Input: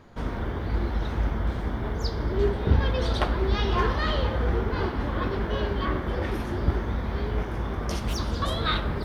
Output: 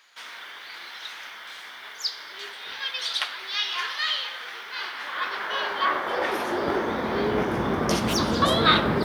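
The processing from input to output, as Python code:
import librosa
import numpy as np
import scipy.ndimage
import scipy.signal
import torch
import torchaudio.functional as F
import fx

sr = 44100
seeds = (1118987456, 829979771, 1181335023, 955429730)

y = fx.filter_sweep_highpass(x, sr, from_hz=2500.0, to_hz=180.0, start_s=4.69, end_s=7.59, q=0.9)
y = y * 10.0 ** (8.5 / 20.0)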